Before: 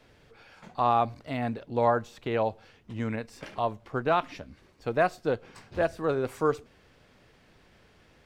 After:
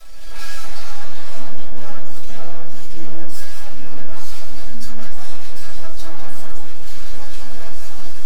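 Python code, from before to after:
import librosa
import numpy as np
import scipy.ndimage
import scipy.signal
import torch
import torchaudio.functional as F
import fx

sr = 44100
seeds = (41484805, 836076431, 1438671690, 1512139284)

y = fx.lower_of_two(x, sr, delay_ms=3.6)
y = fx.recorder_agc(y, sr, target_db=-16.0, rise_db_per_s=78.0, max_gain_db=30)
y = fx.bass_treble(y, sr, bass_db=7, treble_db=13)
y = np.maximum(y, 0.0)
y = fx.vibrato(y, sr, rate_hz=6.1, depth_cents=32.0)
y = fx.peak_eq(y, sr, hz=180.0, db=-11.5, octaves=2.5)
y = fx.comb_fb(y, sr, f0_hz=330.0, decay_s=0.17, harmonics='all', damping=0.0, mix_pct=80)
y = fx.echo_pitch(y, sr, ms=256, semitones=-3, count=2, db_per_echo=-3.0)
y = y + 10.0 ** (-9.0 / 20.0) * np.pad(y, (int(200 * sr / 1000.0), 0))[:len(y)]
y = fx.room_shoebox(y, sr, seeds[0], volume_m3=230.0, walls='furnished', distance_m=6.5)
y = fx.env_flatten(y, sr, amount_pct=50)
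y = y * librosa.db_to_amplitude(-13.5)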